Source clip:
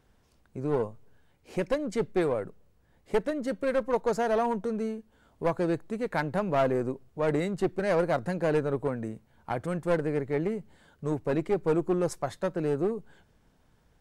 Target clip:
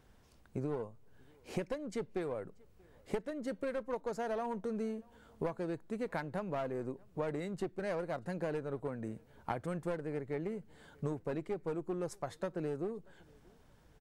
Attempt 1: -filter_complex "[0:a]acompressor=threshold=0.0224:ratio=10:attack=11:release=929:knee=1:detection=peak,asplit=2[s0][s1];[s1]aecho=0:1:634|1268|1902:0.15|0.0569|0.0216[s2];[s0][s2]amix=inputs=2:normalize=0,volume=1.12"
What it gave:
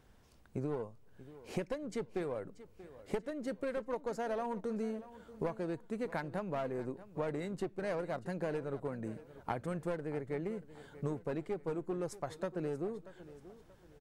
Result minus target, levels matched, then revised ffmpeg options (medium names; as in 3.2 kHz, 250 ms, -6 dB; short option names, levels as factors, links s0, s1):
echo-to-direct +11.5 dB
-filter_complex "[0:a]acompressor=threshold=0.0224:ratio=10:attack=11:release=929:knee=1:detection=peak,asplit=2[s0][s1];[s1]aecho=0:1:634|1268:0.0398|0.0151[s2];[s0][s2]amix=inputs=2:normalize=0,volume=1.12"